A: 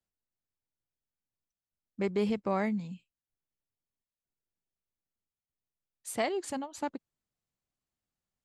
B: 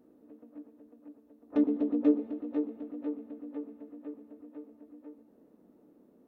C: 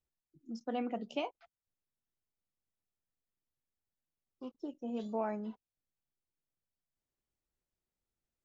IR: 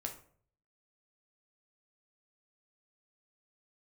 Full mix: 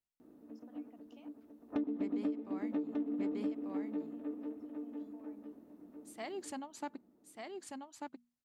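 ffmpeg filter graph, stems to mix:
-filter_complex "[0:a]highpass=120,bandreject=f=60:t=h:w=6,bandreject=f=120:t=h:w=6,bandreject=f=180:t=h:w=6,bandreject=f=240:t=h:w=6,volume=2dB,afade=t=out:st=2.13:d=0.36:silence=0.375837,afade=t=in:st=6.17:d=0.24:silence=0.316228,asplit=3[a][b][c];[b]volume=-23dB[d];[c]volume=-3dB[e];[1:a]adelay=200,volume=2dB,asplit=2[f][g];[g]volume=-8.5dB[h];[2:a]acompressor=threshold=-41dB:ratio=6,volume=-15.5dB[i];[3:a]atrim=start_sample=2205[j];[d][j]afir=irnorm=-1:irlink=0[k];[e][h]amix=inputs=2:normalize=0,aecho=0:1:1191:1[l];[a][f][i][k][l]amix=inputs=5:normalize=0,equalizer=f=500:t=o:w=0.4:g=-6.5,acompressor=threshold=-32dB:ratio=12"

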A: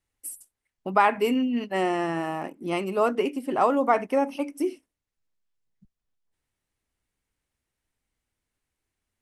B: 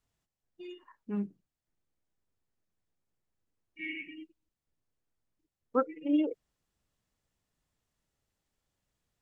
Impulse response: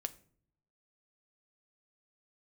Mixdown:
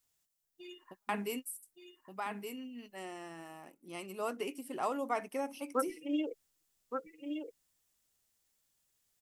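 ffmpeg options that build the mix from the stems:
-filter_complex "[0:a]adelay=50,volume=-8.5dB,afade=t=in:st=2.62:d=0.58:silence=0.446684,asplit=2[a][b];[b]volume=-5.5dB[c];[1:a]lowshelf=f=220:g=-8,volume=-4dB,asplit=3[d][e][f];[d]atrim=end=3.7,asetpts=PTS-STARTPTS,afade=t=out:st=3.696:d=0.004:c=hsin[g];[e]atrim=start=3.7:end=4.51,asetpts=PTS-STARTPTS,volume=0[h];[f]atrim=start=4.51,asetpts=PTS-STARTPTS,afade=t=in:d=0.004:c=hsin[i];[g][h][i]concat=n=3:v=0:a=1,asplit=3[j][k][l];[k]volume=-6dB[m];[l]apad=whole_len=408667[n];[a][n]sidechaingate=range=-58dB:threshold=-59dB:ratio=16:detection=peak[o];[c][m]amix=inputs=2:normalize=0,aecho=0:1:1170:1[p];[o][j][p]amix=inputs=3:normalize=0,crystalizer=i=3.5:c=0"

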